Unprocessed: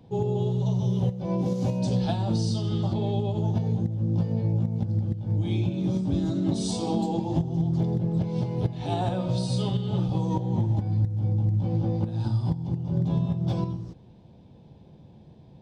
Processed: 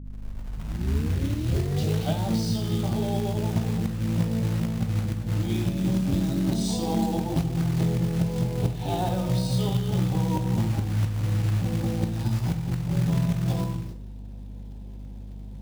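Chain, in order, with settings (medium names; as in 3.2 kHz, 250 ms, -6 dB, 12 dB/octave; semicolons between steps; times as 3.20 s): tape start-up on the opening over 2.27 s; short-mantissa float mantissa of 2-bit; hum 50 Hz, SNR 12 dB; reverberation RT60 0.50 s, pre-delay 13 ms, DRR 7.5 dB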